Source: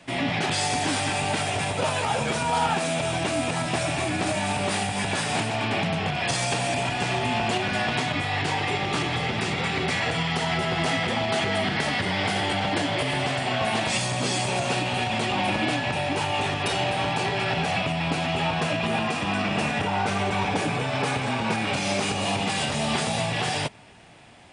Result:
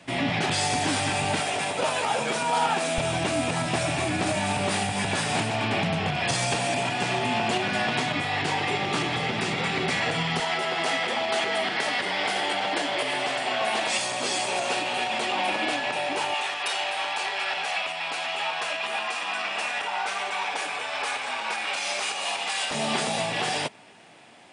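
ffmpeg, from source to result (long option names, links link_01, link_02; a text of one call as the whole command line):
ffmpeg -i in.wav -af "asetnsamples=nb_out_samples=441:pad=0,asendcmd='1.4 highpass f 240;2.98 highpass f 63;6.55 highpass f 140;10.4 highpass f 380;16.34 highpass f 830;22.71 highpass f 220',highpass=56" out.wav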